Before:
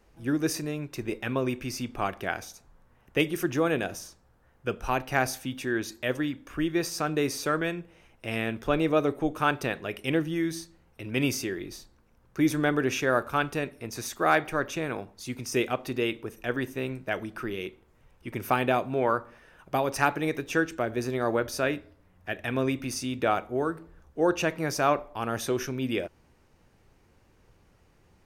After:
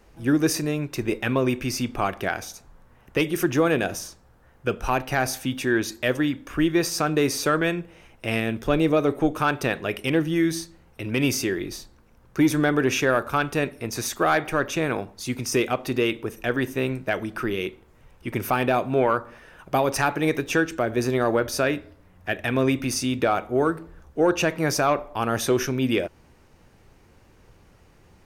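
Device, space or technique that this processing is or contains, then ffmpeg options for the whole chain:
soft clipper into limiter: -filter_complex "[0:a]asettb=1/sr,asplit=3[link_01][link_02][link_03];[link_01]atrim=end=8.404[link_04];[link_02]atrim=start=8.4:end=8.97,asetpts=PTS-STARTPTS,afade=type=in:duration=0.004:curve=qsin,afade=type=out:start_time=0.566:duration=0.004:curve=qsin,equalizer=frequency=1300:width_type=o:width=2.5:gain=-4.5[link_05];[link_03]atrim=start=8.966[link_06];[link_04][link_05]acrossfade=duration=0.004:curve1=hsin:curve2=qsin[link_07];[link_07][link_06]acrossfade=duration=0.004:curve1=qsin:curve2=hsin,asoftclip=type=tanh:threshold=-12.5dB,alimiter=limit=-17.5dB:level=0:latency=1:release=232,volume=7dB"

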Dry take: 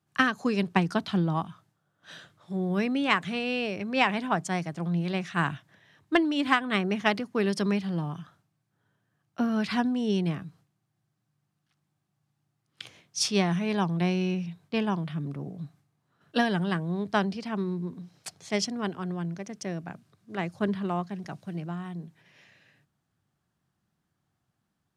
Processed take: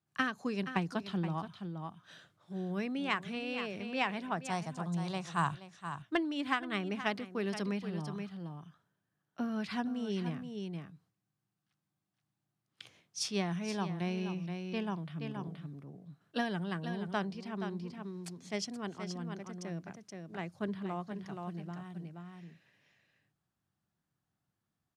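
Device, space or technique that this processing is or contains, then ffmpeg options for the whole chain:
ducked delay: -filter_complex "[0:a]asettb=1/sr,asplit=3[link_01][link_02][link_03];[link_01]atrim=end=4.504[link_04];[link_02]atrim=start=4.5:end=5.55,asetpts=PTS-STARTPTS,afade=type=in:duration=0.004:curve=qsin,afade=type=out:start_time=1.046:duration=0.004:curve=qsin,equalizer=frequency=125:width_type=o:width=1:gain=7,equalizer=frequency=250:width_type=o:width=1:gain=-5,equalizer=frequency=1000:width_type=o:width=1:gain=10,equalizer=frequency=2000:width_type=o:width=1:gain=-6,equalizer=frequency=4000:width_type=o:width=1:gain=4,equalizer=frequency=8000:width_type=o:width=1:gain=11[link_05];[link_03]atrim=start=5.546[link_06];[link_04][link_05]acrossfade=duration=0.004:curve1=hsin:curve2=qsin[link_07];[link_07][link_06]acrossfade=duration=0.004:curve1=qsin:curve2=hsin,asplit=3[link_08][link_09][link_10];[link_09]adelay=475,volume=-4dB[link_11];[link_10]apad=whole_len=1121964[link_12];[link_11][link_12]sidechaincompress=threshold=-27dB:ratio=8:attack=6:release=828[link_13];[link_08][link_13]amix=inputs=2:normalize=0,volume=-9dB"

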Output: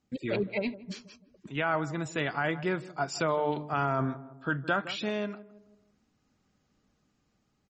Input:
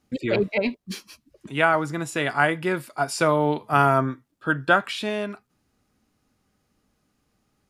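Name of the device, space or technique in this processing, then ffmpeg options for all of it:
low-bitrate web radio: -filter_complex "[0:a]asplit=3[link_01][link_02][link_03];[link_01]afade=type=out:start_time=3.25:duration=0.02[link_04];[link_02]bandreject=frequency=50:width_type=h:width=6,bandreject=frequency=100:width_type=h:width=6,bandreject=frequency=150:width_type=h:width=6,bandreject=frequency=200:width_type=h:width=6,bandreject=frequency=250:width_type=h:width=6,bandreject=frequency=300:width_type=h:width=6,afade=type=in:start_time=3.25:duration=0.02,afade=type=out:start_time=3.9:duration=0.02[link_05];[link_03]afade=type=in:start_time=3.9:duration=0.02[link_06];[link_04][link_05][link_06]amix=inputs=3:normalize=0,equalizer=frequency=170:width=1.3:gain=3,asplit=2[link_07][link_08];[link_08]adelay=162,lowpass=frequency=940:poles=1,volume=-16.5dB,asplit=2[link_09][link_10];[link_10]adelay=162,lowpass=frequency=940:poles=1,volume=0.49,asplit=2[link_11][link_12];[link_12]adelay=162,lowpass=frequency=940:poles=1,volume=0.49,asplit=2[link_13][link_14];[link_14]adelay=162,lowpass=frequency=940:poles=1,volume=0.49[link_15];[link_07][link_09][link_11][link_13][link_15]amix=inputs=5:normalize=0,dynaudnorm=framelen=320:gausssize=9:maxgain=5.5dB,alimiter=limit=-9dB:level=0:latency=1:release=14,volume=-8dB" -ar 48000 -c:a libmp3lame -b:a 32k

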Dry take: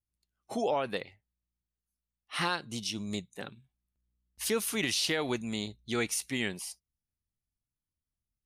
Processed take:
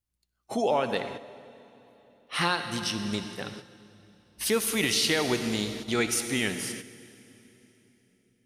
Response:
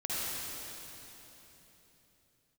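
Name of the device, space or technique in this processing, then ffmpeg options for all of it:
keyed gated reverb: -filter_complex "[0:a]asettb=1/sr,asplit=3[link_01][link_02][link_03];[link_01]atrim=end=2.624[link_04];[link_02]atrim=start=2.62:end=4.48,asetpts=PTS-STARTPTS,afade=type=in:duration=0.004:curve=qsin,afade=type=out:start_time=1.856:duration=0.004:curve=qsin,bandreject=frequency=6900:width=6.1[link_05];[link_03]atrim=start=4.476[link_06];[link_04][link_05]acrossfade=duration=0.004:curve1=hsin:curve2=qsin[link_07];[link_07][link_06]acrossfade=duration=0.004:curve1=qsin:curve2=hsin,asplit=3[link_08][link_09][link_10];[1:a]atrim=start_sample=2205[link_11];[link_09][link_11]afir=irnorm=-1:irlink=0[link_12];[link_10]apad=whole_len=372789[link_13];[link_12][link_13]sidechaingate=range=-8dB:threshold=-53dB:ratio=16:detection=peak,volume=-12dB[link_14];[link_08][link_14]amix=inputs=2:normalize=0,volume=3dB"

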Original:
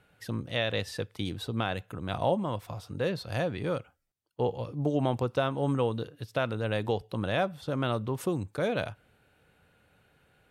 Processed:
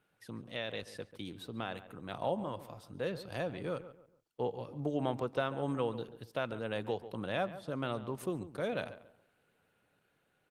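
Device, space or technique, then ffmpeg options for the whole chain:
video call: -filter_complex "[0:a]asplit=3[link_01][link_02][link_03];[link_01]afade=type=out:start_time=4.76:duration=0.02[link_04];[link_02]equalizer=frequency=1700:width=0.96:gain=3,afade=type=in:start_time=4.76:duration=0.02,afade=type=out:start_time=5.9:duration=0.02[link_05];[link_03]afade=type=in:start_time=5.9:duration=0.02[link_06];[link_04][link_05][link_06]amix=inputs=3:normalize=0,highpass=140,asplit=2[link_07][link_08];[link_08]adelay=140,lowpass=frequency=2100:poles=1,volume=-13dB,asplit=2[link_09][link_10];[link_10]adelay=140,lowpass=frequency=2100:poles=1,volume=0.32,asplit=2[link_11][link_12];[link_12]adelay=140,lowpass=frequency=2100:poles=1,volume=0.32[link_13];[link_07][link_09][link_11][link_13]amix=inputs=4:normalize=0,dynaudnorm=framelen=810:gausssize=5:maxgain=3dB,volume=-9dB" -ar 48000 -c:a libopus -b:a 24k

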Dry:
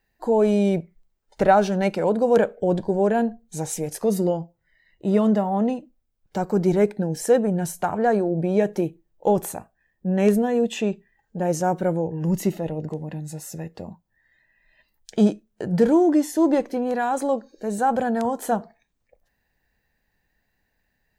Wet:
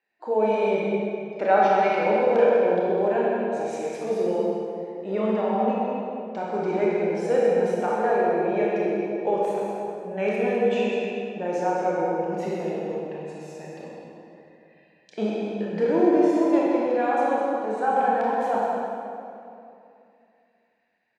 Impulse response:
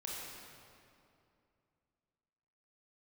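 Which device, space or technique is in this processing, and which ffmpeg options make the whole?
station announcement: -filter_complex "[0:a]highpass=340,lowpass=3600,equalizer=frequency=2400:width_type=o:width=0.21:gain=8.5,aecho=1:1:128.3|201.2:0.316|0.355[link_01];[1:a]atrim=start_sample=2205[link_02];[link_01][link_02]afir=irnorm=-1:irlink=0"

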